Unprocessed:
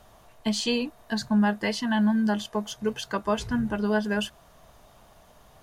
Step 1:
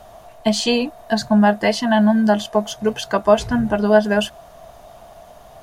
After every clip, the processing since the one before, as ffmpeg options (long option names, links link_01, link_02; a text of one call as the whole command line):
ffmpeg -i in.wav -af "equalizer=frequency=680:width_type=o:width=0.4:gain=12,volume=7dB" out.wav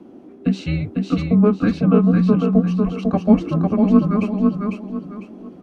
ffmpeg -i in.wav -filter_complex "[0:a]afreqshift=-400,bandpass=frequency=330:width_type=q:width=0.53:csg=0,asplit=2[link_01][link_02];[link_02]aecho=0:1:500|1000|1500|2000:0.668|0.207|0.0642|0.0199[link_03];[link_01][link_03]amix=inputs=2:normalize=0,volume=1dB" out.wav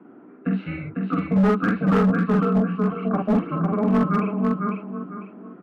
ffmpeg -i in.wav -filter_complex "[0:a]highpass=210,equalizer=frequency=240:width_type=q:width=4:gain=-5,equalizer=frequency=340:width_type=q:width=4:gain=-7,equalizer=frequency=550:width_type=q:width=4:gain=-8,equalizer=frequency=790:width_type=q:width=4:gain=-4,equalizer=frequency=1400:width_type=q:width=4:gain=8,lowpass=frequency=2100:width=0.5412,lowpass=frequency=2100:width=1.3066,asplit=2[link_01][link_02];[link_02]adelay=47,volume=-2dB[link_03];[link_01][link_03]amix=inputs=2:normalize=0,volume=14dB,asoftclip=hard,volume=-14dB" out.wav